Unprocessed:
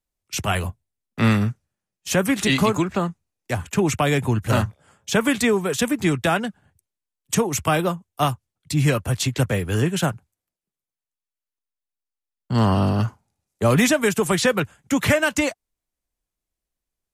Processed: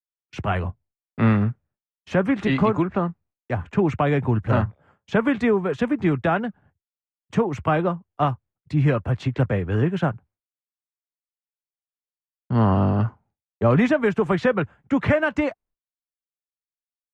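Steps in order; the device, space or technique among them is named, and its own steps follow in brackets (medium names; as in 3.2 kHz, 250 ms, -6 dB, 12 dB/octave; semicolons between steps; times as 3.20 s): hearing-loss simulation (low-pass 1.7 kHz 12 dB/octave; expander -50 dBFS)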